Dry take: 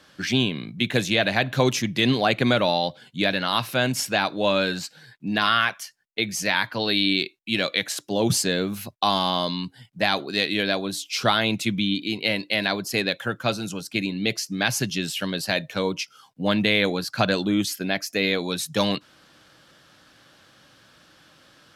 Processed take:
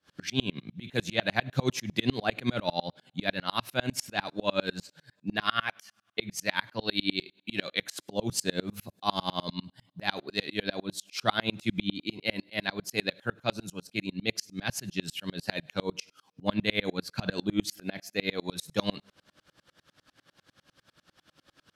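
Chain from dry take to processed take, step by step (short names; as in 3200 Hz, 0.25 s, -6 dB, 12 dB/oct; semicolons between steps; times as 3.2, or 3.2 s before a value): low shelf 160 Hz +3 dB; on a send at -19 dB: reverb, pre-delay 3 ms; on the sum: dB-ramp tremolo swelling 10 Hz, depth 33 dB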